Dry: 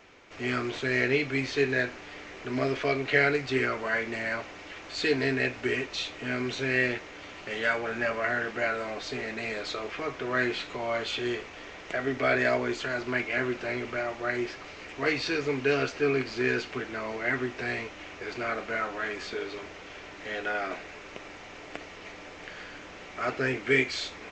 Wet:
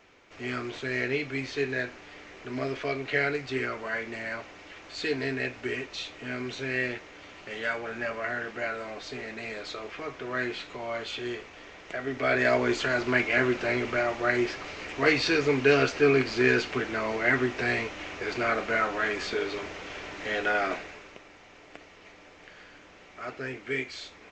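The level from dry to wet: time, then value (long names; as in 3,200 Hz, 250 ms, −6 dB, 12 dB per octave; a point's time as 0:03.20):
0:12.04 −3.5 dB
0:12.71 +4.5 dB
0:20.70 +4.5 dB
0:21.24 −7.5 dB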